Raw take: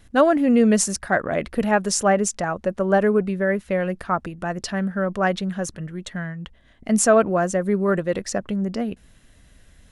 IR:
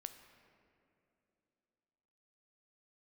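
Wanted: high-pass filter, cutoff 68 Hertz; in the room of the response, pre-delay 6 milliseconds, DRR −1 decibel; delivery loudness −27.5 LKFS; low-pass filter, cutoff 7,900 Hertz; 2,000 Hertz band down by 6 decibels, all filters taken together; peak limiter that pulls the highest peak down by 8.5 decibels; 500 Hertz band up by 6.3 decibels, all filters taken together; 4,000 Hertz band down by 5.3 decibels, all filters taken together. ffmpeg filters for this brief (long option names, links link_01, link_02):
-filter_complex "[0:a]highpass=68,lowpass=7900,equalizer=frequency=500:width_type=o:gain=8.5,equalizer=frequency=2000:width_type=o:gain=-8,equalizer=frequency=4000:width_type=o:gain=-5.5,alimiter=limit=-9.5dB:level=0:latency=1,asplit=2[link_01][link_02];[1:a]atrim=start_sample=2205,adelay=6[link_03];[link_02][link_03]afir=irnorm=-1:irlink=0,volume=5.5dB[link_04];[link_01][link_04]amix=inputs=2:normalize=0,volume=-10dB"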